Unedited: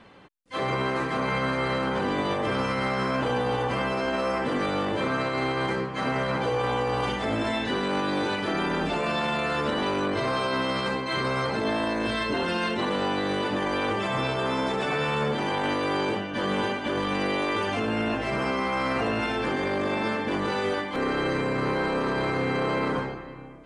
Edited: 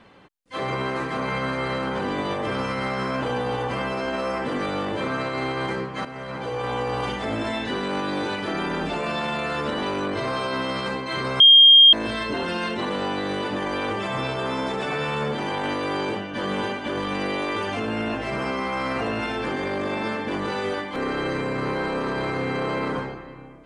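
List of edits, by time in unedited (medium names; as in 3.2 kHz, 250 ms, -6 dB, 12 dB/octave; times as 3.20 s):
6.05–6.81 s: fade in, from -12.5 dB
11.40–11.93 s: bleep 3.22 kHz -7.5 dBFS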